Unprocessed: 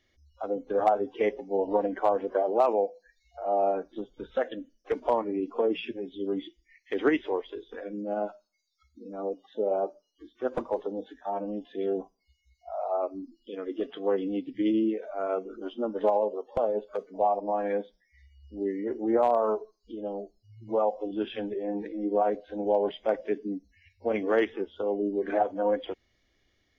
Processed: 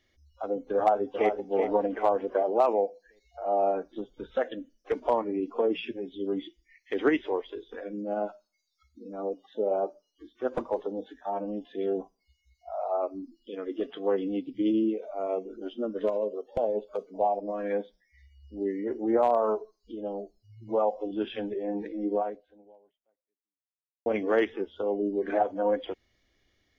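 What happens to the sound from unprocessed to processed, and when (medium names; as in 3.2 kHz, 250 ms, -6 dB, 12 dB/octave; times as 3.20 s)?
0.76–1.36 s: echo throw 380 ms, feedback 40%, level -7.5 dB
14.42–17.70 s: LFO notch sine 0.22 Hz -> 0.98 Hz 800–1800 Hz
22.13–24.06 s: fade out exponential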